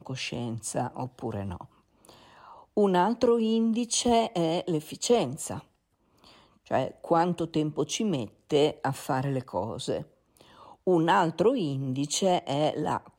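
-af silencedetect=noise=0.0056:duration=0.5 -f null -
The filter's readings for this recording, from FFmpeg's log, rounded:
silence_start: 5.61
silence_end: 6.24 | silence_duration: 0.63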